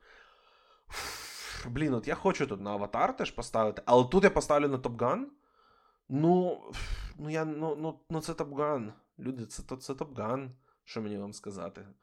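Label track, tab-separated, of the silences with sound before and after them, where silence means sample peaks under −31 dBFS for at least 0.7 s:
5.240000	6.120000	silence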